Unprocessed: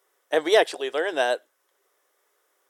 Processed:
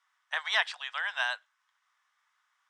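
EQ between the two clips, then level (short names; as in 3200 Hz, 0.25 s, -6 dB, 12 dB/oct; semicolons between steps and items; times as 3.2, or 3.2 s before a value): steep high-pass 960 Hz 36 dB/oct; air absorption 120 m; 0.0 dB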